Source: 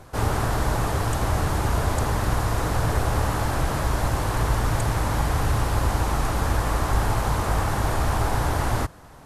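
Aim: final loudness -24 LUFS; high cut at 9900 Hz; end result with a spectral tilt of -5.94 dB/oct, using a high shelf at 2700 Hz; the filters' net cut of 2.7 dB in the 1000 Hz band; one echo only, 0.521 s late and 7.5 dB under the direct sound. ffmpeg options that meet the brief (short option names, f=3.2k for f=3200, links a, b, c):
-af "lowpass=9.9k,equalizer=f=1k:t=o:g=-3,highshelf=f=2.7k:g=-3,aecho=1:1:521:0.422,volume=0.5dB"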